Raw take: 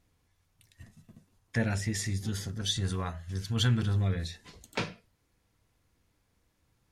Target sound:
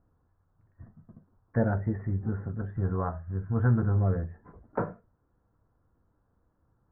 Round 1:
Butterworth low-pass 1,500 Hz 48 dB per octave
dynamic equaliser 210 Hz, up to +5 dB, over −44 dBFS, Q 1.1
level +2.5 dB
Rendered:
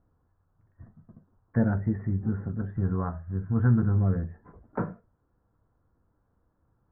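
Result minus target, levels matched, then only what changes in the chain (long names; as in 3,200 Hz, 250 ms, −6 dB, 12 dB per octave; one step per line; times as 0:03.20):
500 Hz band −4.5 dB
change: dynamic equaliser 600 Hz, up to +5 dB, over −44 dBFS, Q 1.1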